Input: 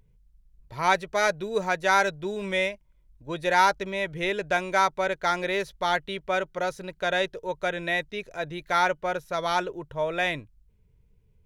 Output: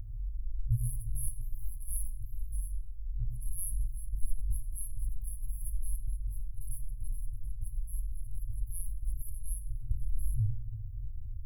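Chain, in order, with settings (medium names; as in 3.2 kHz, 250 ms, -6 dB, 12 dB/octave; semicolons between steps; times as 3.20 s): FFT band-reject 120–10000 Hz; bass shelf 210 Hz +11.5 dB; simulated room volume 610 m³, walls mixed, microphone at 0.61 m; trim +10.5 dB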